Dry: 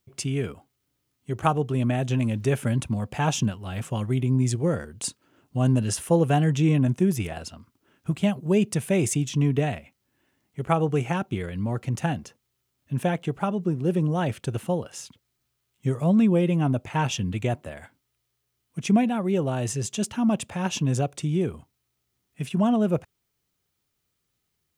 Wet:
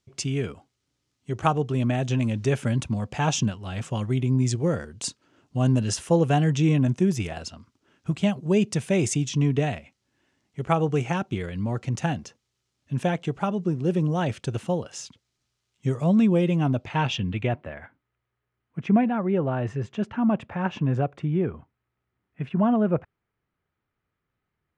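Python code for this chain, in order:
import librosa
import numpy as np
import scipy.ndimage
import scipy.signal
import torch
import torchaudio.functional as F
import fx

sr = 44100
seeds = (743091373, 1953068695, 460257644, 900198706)

y = fx.filter_sweep_lowpass(x, sr, from_hz=6400.0, to_hz=1700.0, start_s=16.49, end_s=17.91, q=1.3)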